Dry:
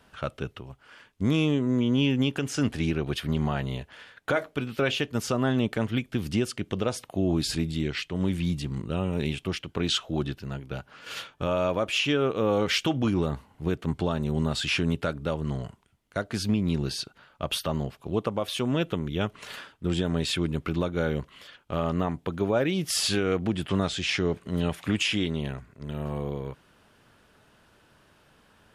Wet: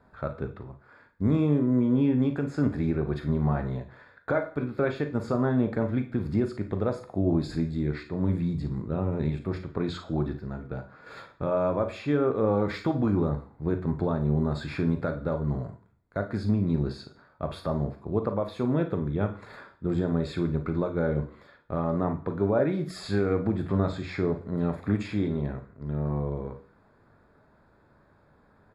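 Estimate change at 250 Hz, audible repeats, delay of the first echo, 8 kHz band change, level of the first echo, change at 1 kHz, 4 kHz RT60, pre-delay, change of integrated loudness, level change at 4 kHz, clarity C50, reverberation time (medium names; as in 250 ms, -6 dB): +0.5 dB, 1, 40 ms, under -15 dB, -11.0 dB, -1.0 dB, 0.45 s, 10 ms, -0.5 dB, -16.5 dB, 11.5 dB, 0.45 s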